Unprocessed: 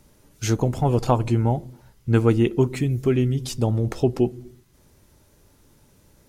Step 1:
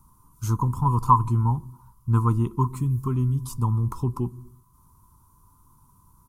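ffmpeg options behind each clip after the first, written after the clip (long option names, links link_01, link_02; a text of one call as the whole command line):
ffmpeg -i in.wav -af "firequalizer=gain_entry='entry(130,0);entry(660,-29);entry(1000,15);entry(1700,-22);entry(10000,1)':delay=0.05:min_phase=1" out.wav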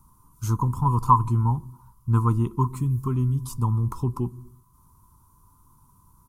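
ffmpeg -i in.wav -af anull out.wav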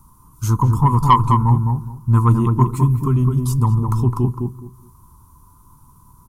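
ffmpeg -i in.wav -filter_complex "[0:a]acontrast=85,asplit=2[link_01][link_02];[link_02]adelay=209,lowpass=frequency=950:poles=1,volume=-3dB,asplit=2[link_03][link_04];[link_04]adelay=209,lowpass=frequency=950:poles=1,volume=0.23,asplit=2[link_05][link_06];[link_06]adelay=209,lowpass=frequency=950:poles=1,volume=0.23[link_07];[link_01][link_03][link_05][link_07]amix=inputs=4:normalize=0" out.wav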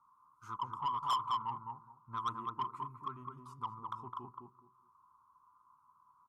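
ffmpeg -i in.wav -af "bandpass=frequency=1200:width_type=q:width=4.2:csg=0,asoftclip=type=tanh:threshold=-22dB,volume=-6.5dB" out.wav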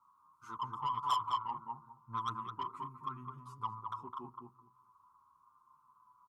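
ffmpeg -i in.wav -filter_complex "[0:a]asplit=2[link_01][link_02];[link_02]adelay=7.6,afreqshift=-0.79[link_03];[link_01][link_03]amix=inputs=2:normalize=1,volume=3.5dB" out.wav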